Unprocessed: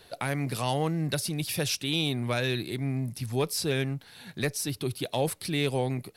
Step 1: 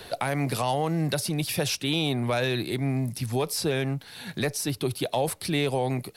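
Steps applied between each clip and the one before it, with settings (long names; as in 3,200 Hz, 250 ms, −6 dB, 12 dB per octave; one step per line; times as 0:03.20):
dynamic equaliser 750 Hz, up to +7 dB, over −42 dBFS, Q 0.95
brickwall limiter −17.5 dBFS, peak gain reduction 5.5 dB
multiband upward and downward compressor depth 40%
level +2 dB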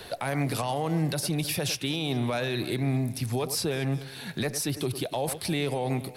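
delay that swaps between a low-pass and a high-pass 104 ms, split 2,200 Hz, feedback 60%, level −13.5 dB
brickwall limiter −19 dBFS, peak gain reduction 6 dB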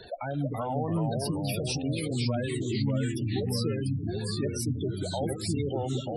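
gate on every frequency bin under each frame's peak −10 dB strong
delay with pitch and tempo change per echo 307 ms, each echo −2 semitones, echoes 3
level −2 dB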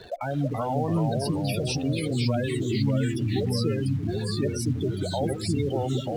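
in parallel at −10.5 dB: bit reduction 7 bits
on the sum: high-shelf EQ 7,300 Hz −7 dB
level +1.5 dB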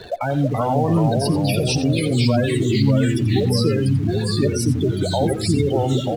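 single-tap delay 88 ms −13.5 dB
level +7.5 dB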